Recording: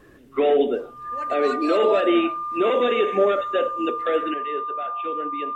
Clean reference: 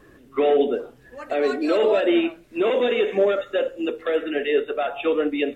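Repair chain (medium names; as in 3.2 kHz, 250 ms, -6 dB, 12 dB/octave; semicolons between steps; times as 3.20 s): band-stop 1.2 kHz, Q 30; trim 0 dB, from 4.34 s +10.5 dB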